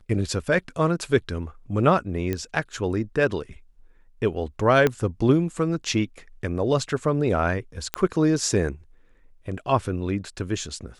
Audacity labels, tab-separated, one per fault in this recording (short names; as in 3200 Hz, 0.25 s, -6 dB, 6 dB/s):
2.330000	2.330000	pop -13 dBFS
4.870000	4.870000	pop -8 dBFS
7.940000	7.940000	pop -8 dBFS